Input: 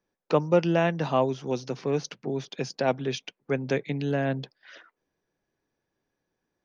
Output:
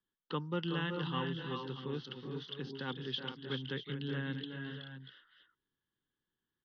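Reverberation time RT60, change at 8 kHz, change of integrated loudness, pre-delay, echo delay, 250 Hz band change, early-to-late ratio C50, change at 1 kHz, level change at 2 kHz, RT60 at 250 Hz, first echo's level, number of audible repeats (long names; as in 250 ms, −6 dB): no reverb audible, can't be measured, −12.0 dB, no reverb audible, 373 ms, −10.0 dB, no reverb audible, −12.5 dB, −7.5 dB, no reverb audible, −8.5 dB, 3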